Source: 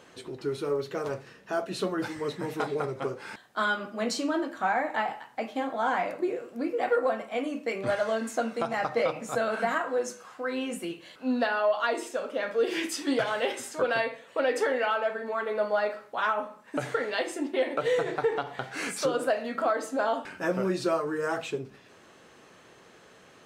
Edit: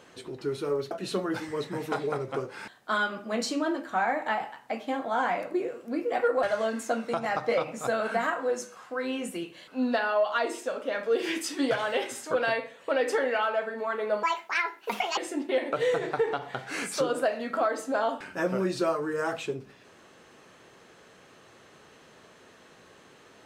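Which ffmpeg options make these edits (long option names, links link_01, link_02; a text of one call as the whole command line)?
ffmpeg -i in.wav -filter_complex "[0:a]asplit=5[link_01][link_02][link_03][link_04][link_05];[link_01]atrim=end=0.912[link_06];[link_02]atrim=start=1.588:end=7.112[link_07];[link_03]atrim=start=7.908:end=15.714[link_08];[link_04]atrim=start=15.71:end=17.22,asetpts=PTS-STARTPTS,asetrate=70560,aresample=44100,atrim=end_sample=41619,asetpts=PTS-STARTPTS[link_09];[link_05]atrim=start=17.216[link_10];[link_06][link_07]acrossfade=duration=0.004:curve1=hsin:curve2=hsin[link_11];[link_11][link_08]acrossfade=duration=0.004:curve1=hsin:curve2=hsin[link_12];[link_12][link_09]acrossfade=duration=0.004:curve1=hsin:curve2=hsin[link_13];[link_13][link_10]acrossfade=duration=0.004:curve1=hsin:curve2=hsin" out.wav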